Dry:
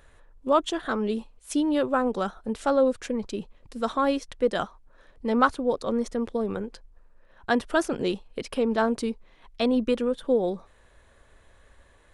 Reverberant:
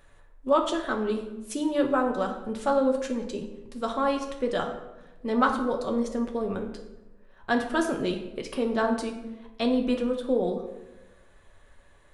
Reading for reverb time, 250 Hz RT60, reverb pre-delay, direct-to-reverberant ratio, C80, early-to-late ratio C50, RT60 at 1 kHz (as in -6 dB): 1.0 s, 1.2 s, 5 ms, 2.0 dB, 10.0 dB, 7.5 dB, 0.90 s